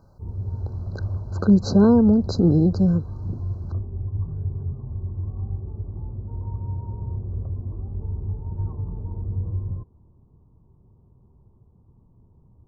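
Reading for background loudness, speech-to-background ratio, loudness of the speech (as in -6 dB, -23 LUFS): -31.0 LUFS, 12.5 dB, -18.5 LUFS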